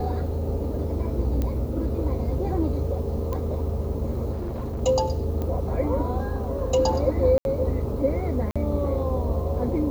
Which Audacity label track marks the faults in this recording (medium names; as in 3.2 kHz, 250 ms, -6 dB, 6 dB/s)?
1.420000	1.420000	pop -15 dBFS
3.330000	3.330000	pop -17 dBFS
4.320000	4.820000	clipped -26 dBFS
5.420000	5.420000	pop -18 dBFS
7.380000	7.450000	dropout 71 ms
8.510000	8.560000	dropout 46 ms